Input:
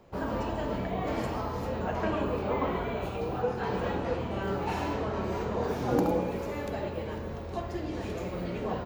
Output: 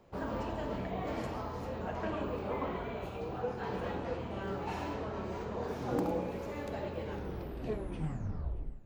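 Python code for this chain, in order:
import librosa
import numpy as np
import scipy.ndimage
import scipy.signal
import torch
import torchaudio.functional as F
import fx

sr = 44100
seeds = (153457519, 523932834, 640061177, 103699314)

y = fx.tape_stop_end(x, sr, length_s=1.83)
y = fx.rider(y, sr, range_db=4, speed_s=2.0)
y = fx.echo_feedback(y, sr, ms=631, feedback_pct=52, wet_db=-22.5)
y = fx.doppler_dist(y, sr, depth_ms=0.17)
y = y * librosa.db_to_amplitude(-6.0)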